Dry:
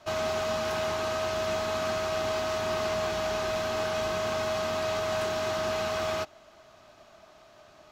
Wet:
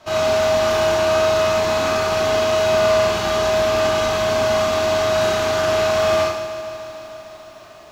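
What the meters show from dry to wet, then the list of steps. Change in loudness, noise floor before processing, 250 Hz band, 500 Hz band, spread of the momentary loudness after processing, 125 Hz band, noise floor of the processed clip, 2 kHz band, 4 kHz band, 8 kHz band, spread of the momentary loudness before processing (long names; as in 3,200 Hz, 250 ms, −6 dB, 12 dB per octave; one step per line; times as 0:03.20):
+12.0 dB, −56 dBFS, +10.5 dB, +12.5 dB, 12 LU, +10.5 dB, −42 dBFS, +10.5 dB, +11.0 dB, +11.0 dB, 1 LU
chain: four-comb reverb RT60 0.79 s, combs from 26 ms, DRR −3 dB
feedback echo at a low word length 150 ms, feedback 80%, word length 9 bits, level −14 dB
level +5.5 dB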